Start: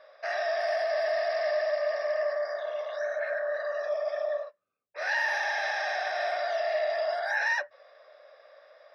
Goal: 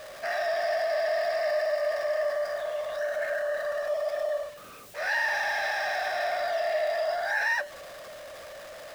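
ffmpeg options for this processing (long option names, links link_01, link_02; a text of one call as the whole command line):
ffmpeg -i in.wav -filter_complex "[0:a]aeval=exprs='val(0)+0.5*0.0106*sgn(val(0))':channel_layout=same,asettb=1/sr,asplit=3[link_01][link_02][link_03];[link_01]atrim=end=1.364[link_04];[link_02]atrim=start=1.36:end=1.87,asetpts=PTS-STARTPTS,afade=type=in:duration=0.004:curve=qsin,afade=type=out:start_time=0.506:duration=0.004:curve=qsin,bandreject=frequency=3300:width=11[link_05];[link_03]atrim=start=1.866[link_06];[link_04][link_05]acrossfade=duration=0.004:curve1=hsin:curve2=qsin[link_07];[link_07][link_06]acrossfade=duration=0.004:curve1=qsin:curve2=hsin" out.wav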